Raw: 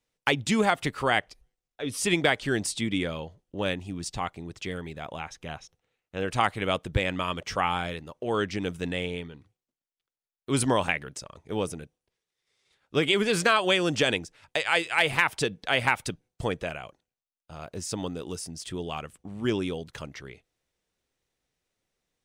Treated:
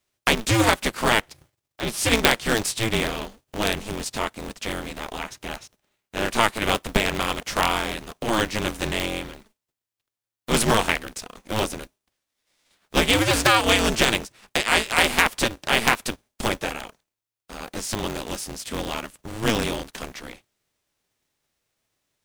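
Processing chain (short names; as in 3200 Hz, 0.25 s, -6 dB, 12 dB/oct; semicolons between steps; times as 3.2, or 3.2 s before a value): spectral whitening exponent 0.6; polarity switched at an audio rate 110 Hz; gain +4.5 dB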